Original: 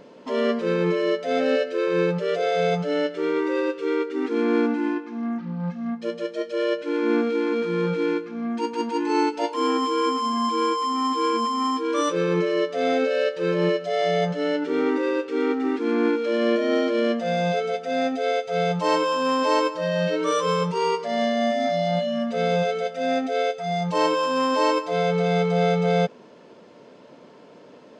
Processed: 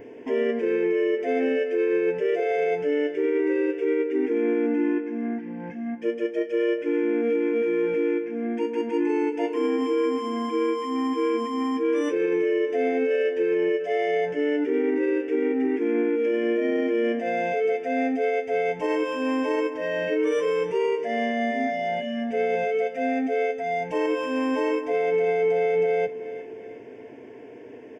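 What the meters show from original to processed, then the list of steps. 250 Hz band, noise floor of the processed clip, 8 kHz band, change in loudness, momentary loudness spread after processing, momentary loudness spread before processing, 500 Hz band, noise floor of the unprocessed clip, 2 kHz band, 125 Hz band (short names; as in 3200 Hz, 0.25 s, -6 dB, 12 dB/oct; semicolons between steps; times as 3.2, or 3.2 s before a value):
-1.0 dB, -42 dBFS, under -10 dB, -1.0 dB, 5 LU, 5 LU, 0.0 dB, -48 dBFS, -1.0 dB, -16.5 dB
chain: fixed phaser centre 830 Hz, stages 8; small resonant body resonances 260/1100 Hz, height 8 dB; in parallel at -1 dB: compressor, threshold -34 dBFS, peak gain reduction 17 dB; on the sum: ten-band EQ 125 Hz +11 dB, 250 Hz -9 dB, 500 Hz +10 dB, 1000 Hz -12 dB, 2000 Hz +4 dB, 4000 Hz -3 dB, 8000 Hz -9 dB; on a send: feedback echo 0.357 s, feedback 46%, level -18.5 dB; on the sum: limiter -16 dBFS, peak gain reduction 6 dB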